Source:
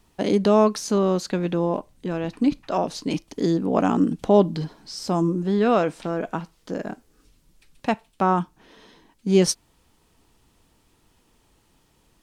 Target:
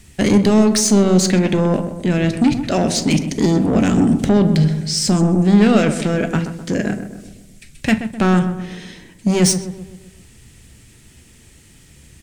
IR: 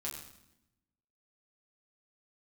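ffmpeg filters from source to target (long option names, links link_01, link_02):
-filter_complex "[0:a]equalizer=frequency=125:width_type=o:width=1:gain=10,equalizer=frequency=1000:width_type=o:width=1:gain=-11,equalizer=frequency=2000:width_type=o:width=1:gain=10,equalizer=frequency=8000:width_type=o:width=1:gain=11,alimiter=limit=-12dB:level=0:latency=1:release=54,asoftclip=type=tanh:threshold=-19.5dB,asplit=2[link_01][link_02];[link_02]adelay=128,lowpass=frequency=1400:poles=1,volume=-9dB,asplit=2[link_03][link_04];[link_04]adelay=128,lowpass=frequency=1400:poles=1,volume=0.53,asplit=2[link_05][link_06];[link_06]adelay=128,lowpass=frequency=1400:poles=1,volume=0.53,asplit=2[link_07][link_08];[link_08]adelay=128,lowpass=frequency=1400:poles=1,volume=0.53,asplit=2[link_09][link_10];[link_10]adelay=128,lowpass=frequency=1400:poles=1,volume=0.53,asplit=2[link_11][link_12];[link_12]adelay=128,lowpass=frequency=1400:poles=1,volume=0.53[link_13];[link_01][link_03][link_05][link_07][link_09][link_11][link_13]amix=inputs=7:normalize=0,asplit=2[link_14][link_15];[1:a]atrim=start_sample=2205,atrim=end_sample=3528,lowshelf=frequency=190:gain=10.5[link_16];[link_15][link_16]afir=irnorm=-1:irlink=0,volume=-7.5dB[link_17];[link_14][link_17]amix=inputs=2:normalize=0,volume=7.5dB"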